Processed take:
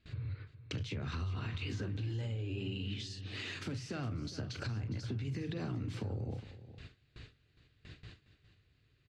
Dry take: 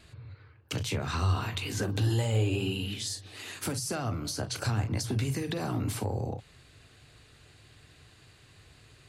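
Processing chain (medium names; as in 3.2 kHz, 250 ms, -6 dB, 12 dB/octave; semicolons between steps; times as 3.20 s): gate with hold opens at -44 dBFS; peaking EQ 820 Hz -10.5 dB 1.5 oct; peak limiter -27 dBFS, peak gain reduction 9 dB; compression 10:1, threshold -43 dBFS, peak gain reduction 13 dB; distance through air 180 m; delay 411 ms -14.5 dB; trim +8 dB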